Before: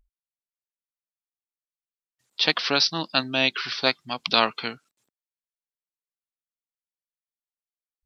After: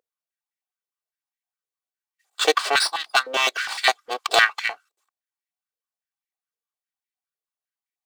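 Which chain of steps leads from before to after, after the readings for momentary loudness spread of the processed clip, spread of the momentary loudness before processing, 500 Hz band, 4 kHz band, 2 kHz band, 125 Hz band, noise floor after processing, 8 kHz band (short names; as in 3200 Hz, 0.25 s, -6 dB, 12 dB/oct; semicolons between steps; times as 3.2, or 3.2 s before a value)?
10 LU, 11 LU, +2.5 dB, -0.5 dB, +6.0 dB, under -15 dB, under -85 dBFS, n/a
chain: minimum comb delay 2.6 ms; stepped high-pass 9.8 Hz 490–2000 Hz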